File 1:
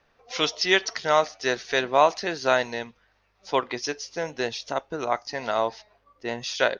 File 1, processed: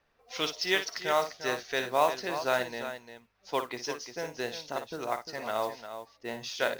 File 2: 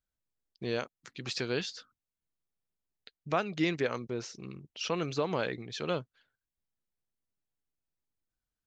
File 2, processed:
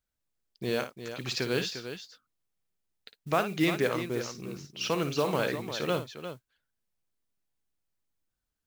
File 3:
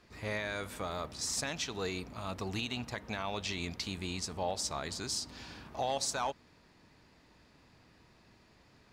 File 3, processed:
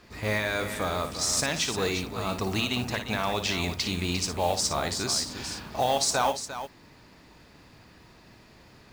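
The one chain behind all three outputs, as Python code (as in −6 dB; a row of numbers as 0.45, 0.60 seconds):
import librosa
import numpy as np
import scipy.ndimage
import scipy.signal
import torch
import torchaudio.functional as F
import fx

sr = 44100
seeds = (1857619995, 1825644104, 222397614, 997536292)

y = fx.mod_noise(x, sr, seeds[0], snr_db=21)
y = fx.echo_multitap(y, sr, ms=(56, 350), db=(-10.0, -10.0))
y = librosa.util.normalize(y) * 10.0 ** (-12 / 20.0)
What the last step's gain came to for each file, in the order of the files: −7.0, +3.0, +8.5 decibels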